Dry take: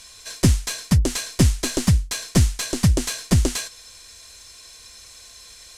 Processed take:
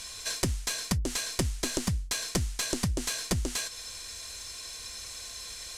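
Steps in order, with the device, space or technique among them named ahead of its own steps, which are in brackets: serial compression, leveller first (compression 2.5:1, threshold -18 dBFS, peak gain reduction 5 dB; compression 6:1, threshold -30 dBFS, peak gain reduction 14 dB); trim +3 dB

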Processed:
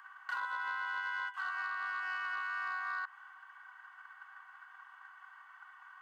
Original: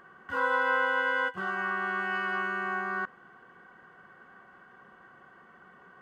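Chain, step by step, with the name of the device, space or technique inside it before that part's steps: steep high-pass 810 Hz 96 dB/octave; drum-bus smash (transient shaper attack +7 dB, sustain +2 dB; compression 12:1, threshold -33 dBFS, peak gain reduction 13 dB; saturation -28.5 dBFS, distortion -21 dB)

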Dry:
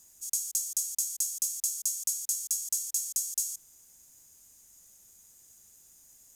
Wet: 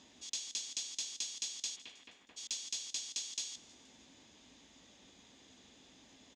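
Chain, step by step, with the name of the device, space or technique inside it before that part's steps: 1.75–2.36 s: low-pass 3.2 kHz -> 1.7 kHz 24 dB/octave; frequency-shifting delay pedal into a guitar cabinet (frequency-shifting echo 158 ms, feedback 57%, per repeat +73 Hz, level -19.5 dB; cabinet simulation 92–3800 Hz, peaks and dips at 93 Hz -8 dB, 140 Hz -8 dB, 260 Hz +9 dB, 1.4 kHz -7 dB, 3.5 kHz +7 dB); trim +11.5 dB

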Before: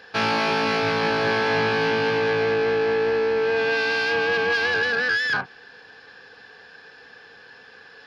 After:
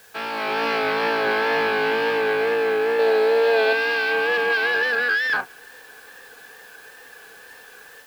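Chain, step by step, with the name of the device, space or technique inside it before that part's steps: dictaphone (band-pass 310–3800 Hz; level rider gain up to 9 dB; wow and flutter; white noise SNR 29 dB); 2.99–3.73 s: fifteen-band graphic EQ 100 Hz -10 dB, 630 Hz +10 dB, 4 kHz +9 dB; trim -7 dB

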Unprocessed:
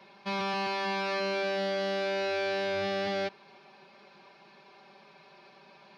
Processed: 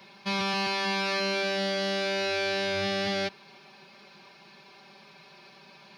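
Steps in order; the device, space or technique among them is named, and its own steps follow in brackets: smiley-face EQ (bass shelf 160 Hz +3.5 dB; peaking EQ 610 Hz -5.5 dB 2.5 oct; treble shelf 5.9 kHz +9 dB); trim +5 dB

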